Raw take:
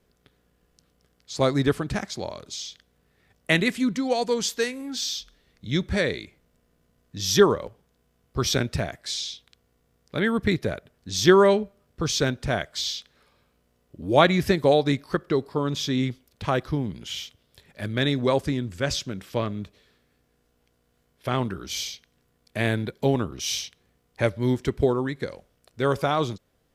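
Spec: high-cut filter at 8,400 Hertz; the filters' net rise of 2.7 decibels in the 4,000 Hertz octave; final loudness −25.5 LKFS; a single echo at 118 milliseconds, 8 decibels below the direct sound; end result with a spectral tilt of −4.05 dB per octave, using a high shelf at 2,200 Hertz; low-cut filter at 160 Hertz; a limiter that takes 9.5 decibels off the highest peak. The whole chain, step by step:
high-pass filter 160 Hz
low-pass filter 8,400 Hz
high-shelf EQ 2,200 Hz −4 dB
parametric band 4,000 Hz +7 dB
brickwall limiter −11.5 dBFS
single-tap delay 118 ms −8 dB
level +1 dB

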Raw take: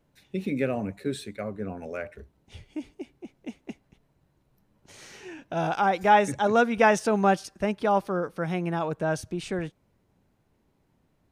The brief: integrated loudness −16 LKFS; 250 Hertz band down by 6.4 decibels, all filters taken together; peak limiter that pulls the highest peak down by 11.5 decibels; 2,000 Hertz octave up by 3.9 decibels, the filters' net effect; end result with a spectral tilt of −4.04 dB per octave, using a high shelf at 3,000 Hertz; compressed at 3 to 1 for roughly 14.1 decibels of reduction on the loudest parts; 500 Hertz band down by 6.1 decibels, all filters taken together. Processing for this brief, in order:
parametric band 250 Hz −7.5 dB
parametric band 500 Hz −6.5 dB
parametric band 2,000 Hz +8 dB
high-shelf EQ 3,000 Hz −6.5 dB
downward compressor 3 to 1, threshold −35 dBFS
level +27 dB
brickwall limiter −4.5 dBFS

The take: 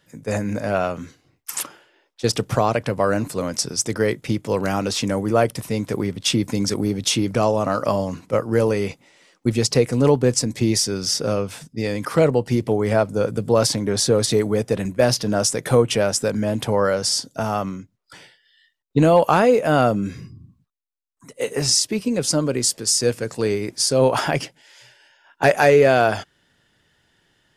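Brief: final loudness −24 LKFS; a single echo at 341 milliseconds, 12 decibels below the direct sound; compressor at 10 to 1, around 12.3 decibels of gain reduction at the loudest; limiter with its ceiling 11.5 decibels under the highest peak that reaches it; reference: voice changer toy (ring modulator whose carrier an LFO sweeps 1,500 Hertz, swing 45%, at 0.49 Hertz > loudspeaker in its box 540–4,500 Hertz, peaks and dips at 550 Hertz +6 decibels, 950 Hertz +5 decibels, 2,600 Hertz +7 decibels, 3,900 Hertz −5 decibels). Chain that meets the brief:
downward compressor 10 to 1, threshold −23 dBFS
brickwall limiter −21 dBFS
single-tap delay 341 ms −12 dB
ring modulator whose carrier an LFO sweeps 1,500 Hz, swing 45%, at 0.49 Hz
loudspeaker in its box 540–4,500 Hz, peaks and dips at 550 Hz +6 dB, 950 Hz +5 dB, 2,600 Hz +7 dB, 3,900 Hz −5 dB
level +7 dB

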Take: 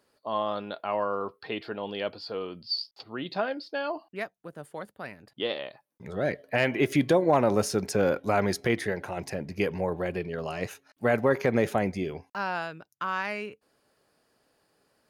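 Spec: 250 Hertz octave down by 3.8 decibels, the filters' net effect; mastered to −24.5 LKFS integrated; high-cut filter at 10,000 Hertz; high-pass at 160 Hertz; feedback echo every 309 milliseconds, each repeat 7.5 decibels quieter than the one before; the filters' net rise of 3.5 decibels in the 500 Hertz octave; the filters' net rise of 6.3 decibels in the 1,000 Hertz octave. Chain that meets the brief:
high-pass filter 160 Hz
low-pass filter 10,000 Hz
parametric band 250 Hz −6 dB
parametric band 500 Hz +3.5 dB
parametric band 1,000 Hz +7.5 dB
repeating echo 309 ms, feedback 42%, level −7.5 dB
level +1 dB

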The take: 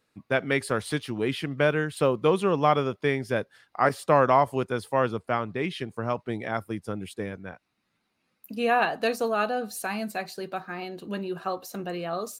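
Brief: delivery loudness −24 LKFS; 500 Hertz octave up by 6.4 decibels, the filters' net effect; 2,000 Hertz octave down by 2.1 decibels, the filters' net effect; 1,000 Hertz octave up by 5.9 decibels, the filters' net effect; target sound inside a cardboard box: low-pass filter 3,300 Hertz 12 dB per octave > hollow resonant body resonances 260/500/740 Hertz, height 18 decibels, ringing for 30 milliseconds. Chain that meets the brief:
low-pass filter 3,300 Hz 12 dB per octave
parametric band 500 Hz +6 dB
parametric band 1,000 Hz +7 dB
parametric band 2,000 Hz −6 dB
hollow resonant body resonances 260/500/740 Hz, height 18 dB, ringing for 30 ms
level −16 dB

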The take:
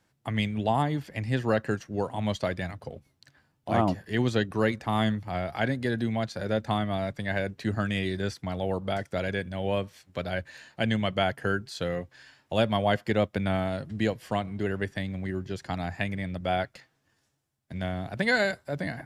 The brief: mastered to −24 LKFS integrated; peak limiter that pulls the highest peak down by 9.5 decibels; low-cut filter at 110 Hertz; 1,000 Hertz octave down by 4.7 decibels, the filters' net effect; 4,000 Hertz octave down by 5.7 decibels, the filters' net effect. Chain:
high-pass filter 110 Hz
parametric band 1,000 Hz −7 dB
parametric band 4,000 Hz −7 dB
level +10 dB
brickwall limiter −12 dBFS

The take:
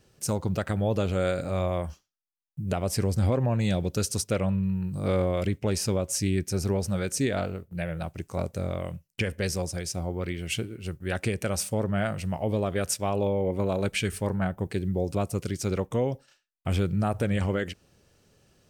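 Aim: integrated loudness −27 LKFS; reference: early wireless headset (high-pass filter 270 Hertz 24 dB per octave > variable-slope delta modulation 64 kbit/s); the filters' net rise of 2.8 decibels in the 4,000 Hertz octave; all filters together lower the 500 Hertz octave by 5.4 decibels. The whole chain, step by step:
high-pass filter 270 Hz 24 dB per octave
parametric band 500 Hz −6.5 dB
parametric band 4,000 Hz +4 dB
variable-slope delta modulation 64 kbit/s
level +7 dB

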